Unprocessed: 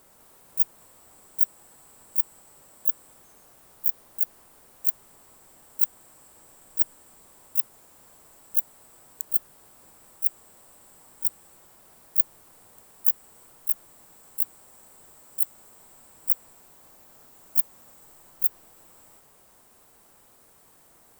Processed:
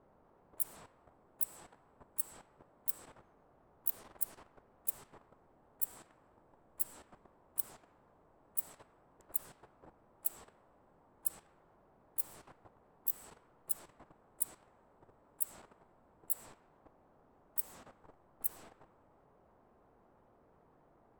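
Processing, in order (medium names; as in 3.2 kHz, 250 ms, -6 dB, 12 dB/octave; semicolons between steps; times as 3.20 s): level-controlled noise filter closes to 890 Hz, open at -22 dBFS; level held to a coarse grid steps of 12 dB; trim +5 dB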